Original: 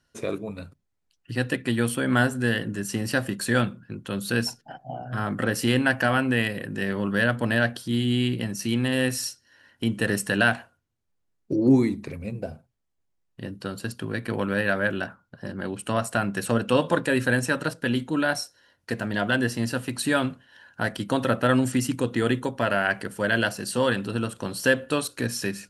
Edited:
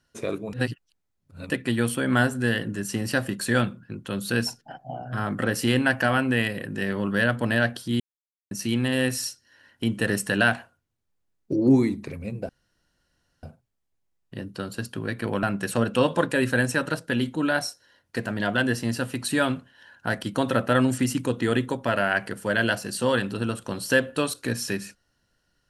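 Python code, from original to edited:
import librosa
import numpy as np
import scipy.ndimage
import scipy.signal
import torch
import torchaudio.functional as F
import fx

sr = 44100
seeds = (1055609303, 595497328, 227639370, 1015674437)

y = fx.edit(x, sr, fx.reverse_span(start_s=0.53, length_s=0.97),
    fx.silence(start_s=8.0, length_s=0.51),
    fx.insert_room_tone(at_s=12.49, length_s=0.94),
    fx.cut(start_s=14.49, length_s=1.68), tone=tone)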